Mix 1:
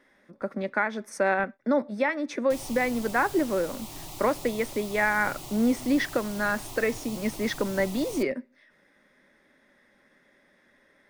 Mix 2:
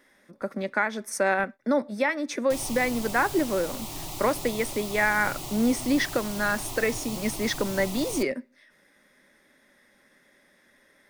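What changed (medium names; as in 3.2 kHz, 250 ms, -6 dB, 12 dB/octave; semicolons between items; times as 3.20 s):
speech: remove low-pass 2.8 kHz 6 dB/octave; background +4.5 dB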